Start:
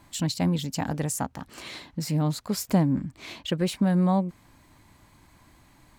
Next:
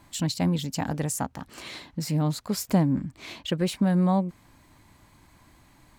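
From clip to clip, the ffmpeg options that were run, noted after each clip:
-af anull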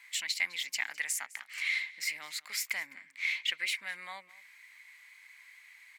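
-filter_complex "[0:a]asplit=2[a][b];[b]alimiter=limit=-19dB:level=0:latency=1:release=251,volume=-2.5dB[c];[a][c]amix=inputs=2:normalize=0,highpass=f=2.1k:t=q:w=8.5,aecho=1:1:207:0.0891,volume=-7dB"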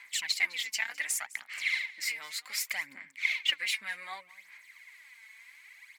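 -af "aphaser=in_gain=1:out_gain=1:delay=4.6:decay=0.59:speed=0.66:type=sinusoidal"

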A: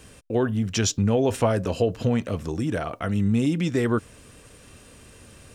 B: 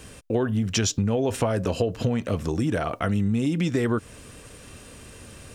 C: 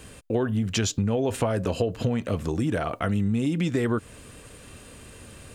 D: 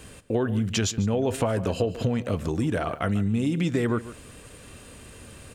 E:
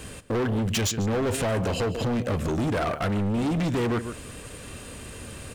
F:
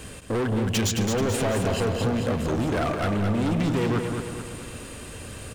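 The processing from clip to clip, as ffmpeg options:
-af "acompressor=threshold=-24dB:ratio=6,volume=4dB"
-af "equalizer=f=5.6k:w=7.3:g=-7,volume=-1dB"
-filter_complex "[0:a]asplit=2[a][b];[b]adelay=145.8,volume=-15dB,highshelf=f=4k:g=-3.28[c];[a][c]amix=inputs=2:normalize=0"
-af "asoftclip=type=hard:threshold=-28.5dB,volume=5.5dB"
-af "aecho=1:1:217|434|651|868|1085|1302|1519:0.501|0.271|0.146|0.0789|0.0426|0.023|0.0124"

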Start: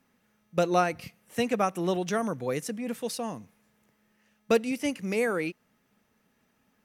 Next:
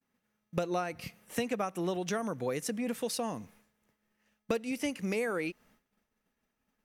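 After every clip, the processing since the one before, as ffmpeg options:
-af "agate=range=-33dB:threshold=-59dB:ratio=3:detection=peak,asubboost=boost=4.5:cutoff=51,acompressor=threshold=-34dB:ratio=5,volume=4dB"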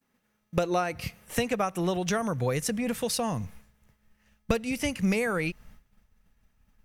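-af "asubboost=boost=10.5:cutoff=100,volume=6.5dB"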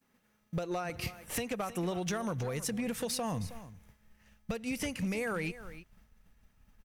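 -af "acompressor=threshold=-32dB:ratio=12,aecho=1:1:317:0.178,asoftclip=type=hard:threshold=-29.5dB,volume=1.5dB"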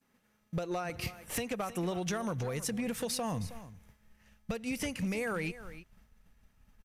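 -af "aresample=32000,aresample=44100"

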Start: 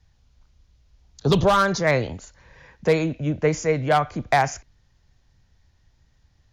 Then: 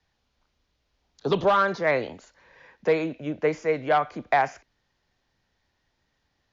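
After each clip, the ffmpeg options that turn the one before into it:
-filter_complex "[0:a]acrossover=split=3500[a][b];[b]acompressor=threshold=-42dB:ratio=4:attack=1:release=60[c];[a][c]amix=inputs=2:normalize=0,acrossover=split=220 5300:gain=0.141 1 0.251[d][e][f];[d][e][f]amix=inputs=3:normalize=0,volume=-2dB"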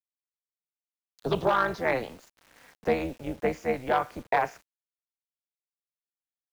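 -af "tremolo=f=250:d=0.824,acrusher=bits=8:mix=0:aa=0.000001"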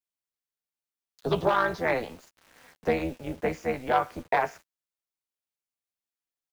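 -filter_complex "[0:a]asplit=2[a][b];[b]adelay=12,volume=-9dB[c];[a][c]amix=inputs=2:normalize=0"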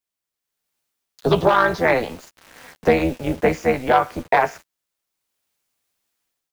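-filter_complex "[0:a]asplit=2[a][b];[b]alimiter=limit=-16.5dB:level=0:latency=1:release=339,volume=1dB[c];[a][c]amix=inputs=2:normalize=0,dynaudnorm=f=390:g=3:m=12dB,volume=-1dB"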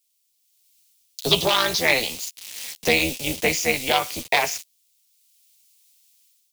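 -af "aexciter=amount=11:drive=3.5:freq=2.3k,volume=-6.5dB"

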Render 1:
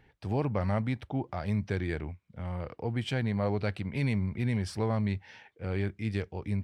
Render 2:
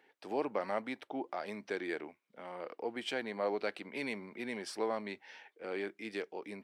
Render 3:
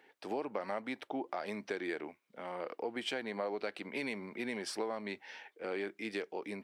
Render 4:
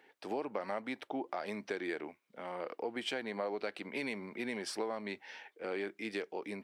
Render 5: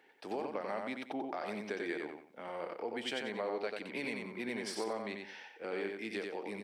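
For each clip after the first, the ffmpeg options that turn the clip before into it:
-af "highpass=f=300:w=0.5412,highpass=f=300:w=1.3066,volume=-1.5dB"
-af "acompressor=threshold=-37dB:ratio=5,volume=3.5dB"
-af anull
-af "aecho=1:1:91|182|273|364:0.631|0.177|0.0495|0.0139,volume=-1.5dB"

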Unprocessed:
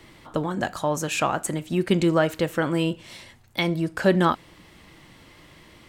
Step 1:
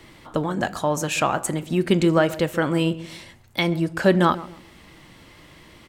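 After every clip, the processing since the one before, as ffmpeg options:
-filter_complex "[0:a]asplit=2[a][b];[b]adelay=134,lowpass=f=860:p=1,volume=-14.5dB,asplit=2[c][d];[d]adelay=134,lowpass=f=860:p=1,volume=0.35,asplit=2[e][f];[f]adelay=134,lowpass=f=860:p=1,volume=0.35[g];[a][c][e][g]amix=inputs=4:normalize=0,volume=2dB"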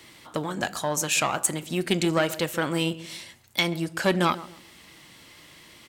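-af "aeval=exprs='(tanh(2.51*val(0)+0.5)-tanh(0.5))/2.51':c=same,highpass=f=100:p=1,highshelf=f=2.3k:g=11,volume=-3.5dB"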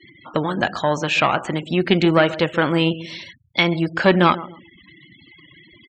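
-filter_complex "[0:a]acrossover=split=3900[a][b];[b]acompressor=threshold=-47dB:ratio=4:attack=1:release=60[c];[a][c]amix=inputs=2:normalize=0,afftfilt=real='re*gte(hypot(re,im),0.00708)':imag='im*gte(hypot(re,im),0.00708)':win_size=1024:overlap=0.75,lowpass=f=6.7k:w=0.5412,lowpass=f=6.7k:w=1.3066,volume=8dB"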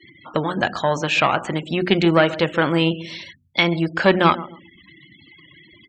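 -af "bandreject=f=60:t=h:w=6,bandreject=f=120:t=h:w=6,bandreject=f=180:t=h:w=6,bandreject=f=240:t=h:w=6,bandreject=f=300:t=h:w=6,bandreject=f=360:t=h:w=6"

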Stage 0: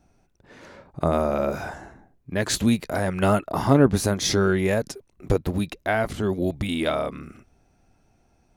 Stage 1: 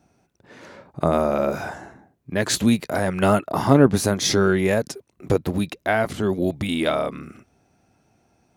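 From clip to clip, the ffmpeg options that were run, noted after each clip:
-af "highpass=98,volume=2.5dB"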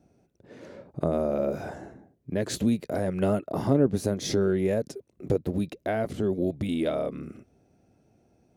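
-af "lowshelf=f=710:t=q:w=1.5:g=7.5,acompressor=threshold=-23dB:ratio=1.5,volume=-8dB"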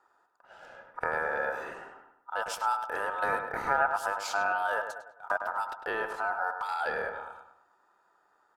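-filter_complex "[0:a]aeval=exprs='val(0)*sin(2*PI*1100*n/s)':c=same,asplit=2[a][b];[b]adelay=102,lowpass=f=2.6k:p=1,volume=-7dB,asplit=2[c][d];[d]adelay=102,lowpass=f=2.6k:p=1,volume=0.43,asplit=2[e][f];[f]adelay=102,lowpass=f=2.6k:p=1,volume=0.43,asplit=2[g][h];[h]adelay=102,lowpass=f=2.6k:p=1,volume=0.43,asplit=2[i][j];[j]adelay=102,lowpass=f=2.6k:p=1,volume=0.43[k];[c][e][g][i][k]amix=inputs=5:normalize=0[l];[a][l]amix=inputs=2:normalize=0,volume=-2.5dB"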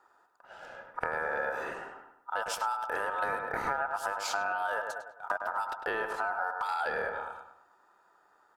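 -af "acompressor=threshold=-31dB:ratio=6,volume=3dB"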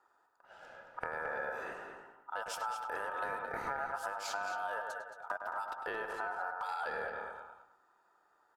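-filter_complex "[0:a]asplit=2[a][b];[b]adelay=221.6,volume=-7dB,highshelf=f=4k:g=-4.99[c];[a][c]amix=inputs=2:normalize=0,volume=-6.5dB"

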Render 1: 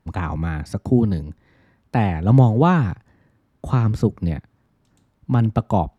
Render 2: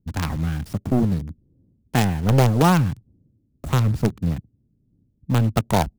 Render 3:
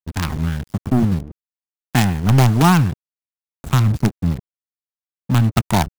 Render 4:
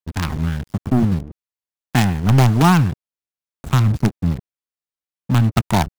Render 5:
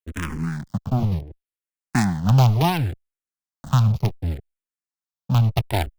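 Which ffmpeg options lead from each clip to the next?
-filter_complex "[0:a]acrossover=split=370[a][b];[a]asoftclip=type=hard:threshold=-14.5dB[c];[b]acrusher=bits=4:dc=4:mix=0:aa=0.000001[d];[c][d]amix=inputs=2:normalize=0"
-af "equalizer=f=510:t=o:w=0.56:g=-13.5,aeval=exprs='sgn(val(0))*max(abs(val(0))-0.0211,0)':c=same,volume=5.5dB"
-af "highshelf=f=6.7k:g=-4"
-filter_complex "[0:a]asplit=2[a][b];[b]afreqshift=-0.68[c];[a][c]amix=inputs=2:normalize=1,volume=-1.5dB"

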